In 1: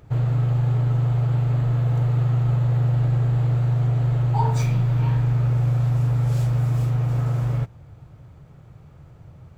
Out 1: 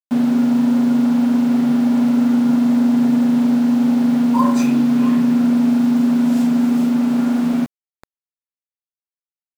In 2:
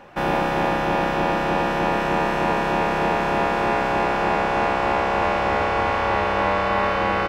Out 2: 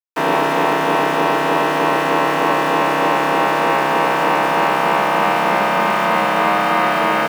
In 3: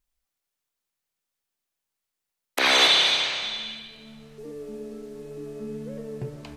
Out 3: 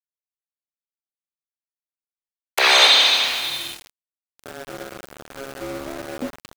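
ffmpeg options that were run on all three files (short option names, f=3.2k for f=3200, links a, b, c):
-af "afreqshift=120,aeval=exprs='val(0)*gte(abs(val(0)),0.0211)':c=same,volume=5dB"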